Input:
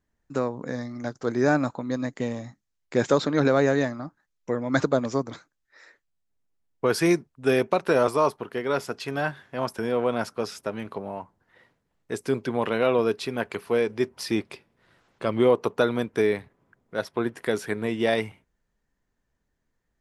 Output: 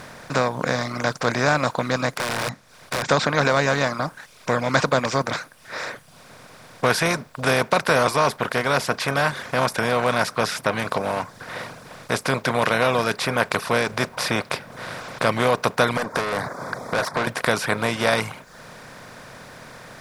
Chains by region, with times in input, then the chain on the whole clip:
0:02.12–0:03.09: low-shelf EQ 450 Hz +2.5 dB + downward compressor 20 to 1, threshold −33 dBFS + wrap-around overflow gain 35 dB
0:15.97–0:17.27: Butterworth band-reject 2,800 Hz, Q 0.86 + downward compressor 2 to 1, threshold −43 dBFS + mid-hump overdrive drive 26 dB, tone 1,800 Hz, clips at −23.5 dBFS
whole clip: compressor on every frequency bin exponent 0.4; reverb reduction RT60 0.61 s; parametric band 350 Hz −14 dB 0.95 octaves; level +3 dB

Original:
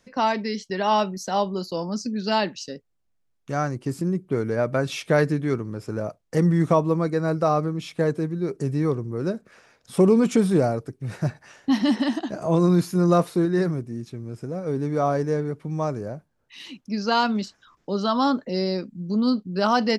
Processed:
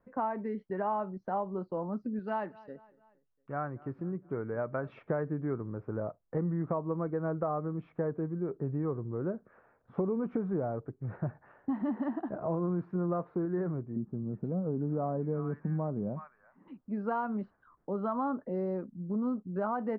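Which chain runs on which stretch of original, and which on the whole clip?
0:02.19–0:04.99: tilt shelving filter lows −5 dB, about 1,500 Hz + repeating echo 232 ms, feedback 51%, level −23.5 dB
0:13.96–0:16.68: parametric band 200 Hz +13 dB 0.71 octaves + multiband delay without the direct sound lows, highs 370 ms, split 1,300 Hz
whole clip: low-pass filter 1,400 Hz 24 dB per octave; parametric band 200 Hz −2.5 dB 2.3 octaves; downward compressor, threshold −24 dBFS; level −4.5 dB

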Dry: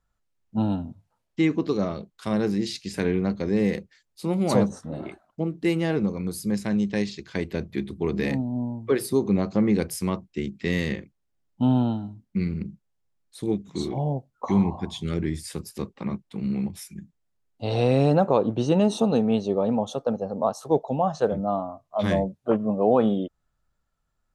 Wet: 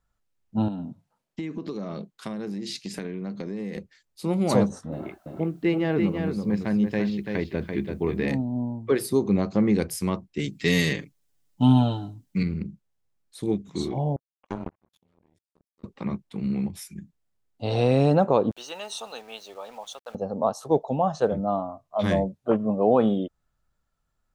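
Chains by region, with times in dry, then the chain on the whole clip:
0:00.68–0:03.76: low shelf with overshoot 110 Hz −11.5 dB, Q 1.5 + downward compressor 12 to 1, threshold −28 dBFS
0:04.92–0:08.28: low-pass filter 3,000 Hz + bit-depth reduction 12 bits, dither triangular + single-tap delay 337 ms −5.5 dB
0:10.39–0:12.43: high-shelf EQ 3,200 Hz +11.5 dB + comb filter 6.9 ms, depth 85%
0:14.16–0:15.84: frequency shifter +14 Hz + output level in coarse steps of 12 dB + power curve on the samples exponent 3
0:18.51–0:20.15: high-pass filter 1,300 Hz + centre clipping without the shift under −50.5 dBFS
whole clip: no processing

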